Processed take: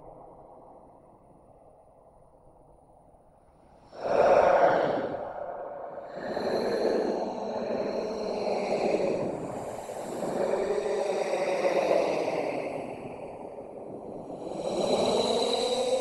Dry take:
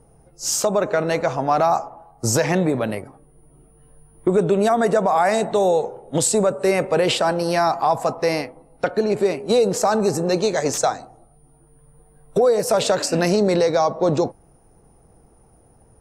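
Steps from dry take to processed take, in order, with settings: Paulstretch 16×, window 0.05 s, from 8.57; harmonic-percussive split harmonic -18 dB; band shelf 770 Hz +8.5 dB 1.3 oct

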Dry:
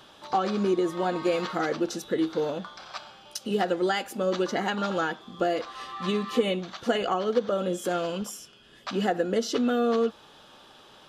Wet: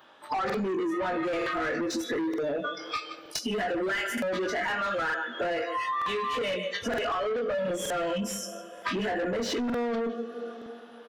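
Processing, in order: bell 4800 Hz -3.5 dB 1.6 oct; doubler 21 ms -6 dB; spectral noise reduction 26 dB; 4.47–6.73 HPF 400 Hz 12 dB/oct; echo 0.154 s -20 dB; reverb, pre-delay 3 ms, DRR 13.5 dB; overdrive pedal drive 26 dB, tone 1600 Hz, clips at -11.5 dBFS; limiter -21.5 dBFS, peak gain reduction 9.5 dB; bell 1800 Hz +4 dB 0.57 oct; compressor 3:1, threshold -38 dBFS, peak gain reduction 11.5 dB; crackling interface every 0.92 s, samples 2048, repeat, from 0.45; gain +6.5 dB

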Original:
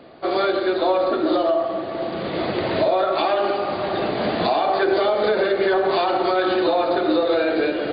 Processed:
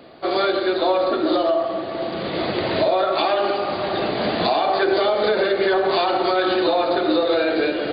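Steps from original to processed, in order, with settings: high shelf 4300 Hz +8.5 dB

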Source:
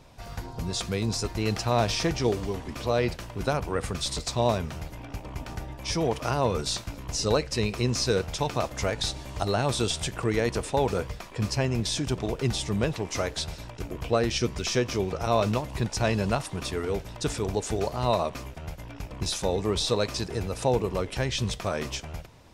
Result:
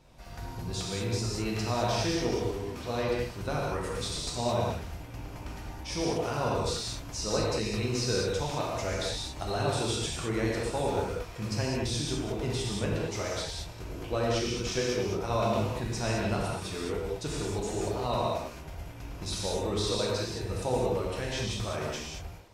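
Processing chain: non-linear reverb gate 0.24 s flat, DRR -4 dB; gain -8.5 dB

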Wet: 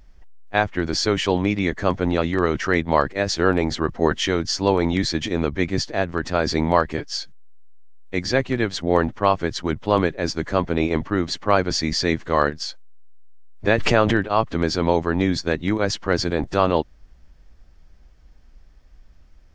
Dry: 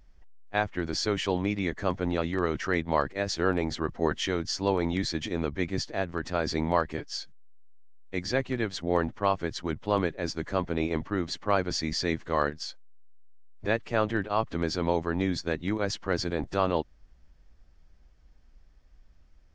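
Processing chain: 13.67–14.2 backwards sustainer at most 24 dB/s; gain +7.5 dB

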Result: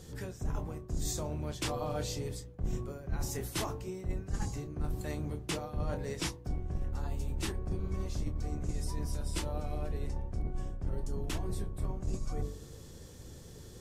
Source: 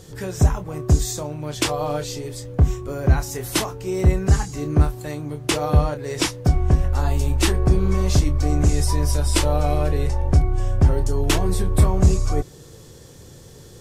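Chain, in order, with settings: octaver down 1 oct, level +1 dB; de-hum 48.54 Hz, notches 24; reverse; compressor 12:1, threshold -23 dBFS, peak gain reduction 18.5 dB; reverse; gain -7.5 dB

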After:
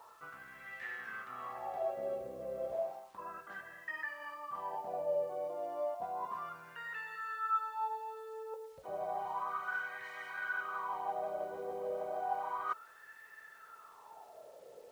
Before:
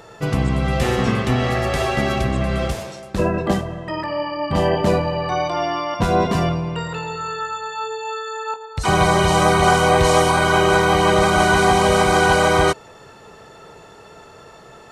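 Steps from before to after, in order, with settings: reverse; compressor 10:1, threshold -24 dBFS, peak gain reduction 14 dB; reverse; wah 0.32 Hz 510–1800 Hz, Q 8.3; bit-crush 11-bit

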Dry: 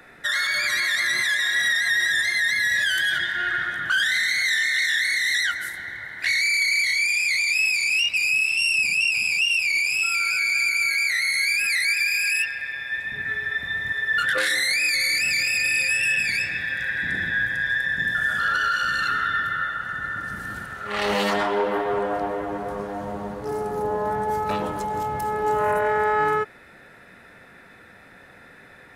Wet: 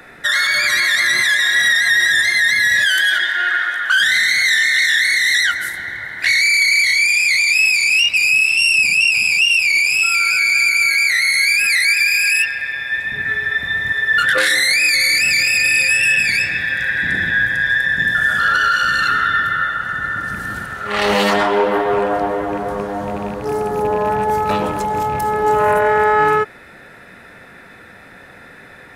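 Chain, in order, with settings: rattling part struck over -32 dBFS, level -32 dBFS; 2.85–3.99 HPF 330 Hz -> 750 Hz 12 dB/oct; gain +7.5 dB

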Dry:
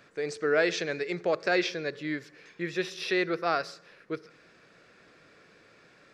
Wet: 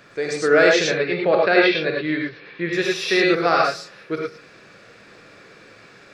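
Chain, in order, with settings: 0.85–2.73 steep low-pass 4200 Hz 36 dB/oct; non-linear reverb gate 0.13 s rising, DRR -1.5 dB; gain +7.5 dB

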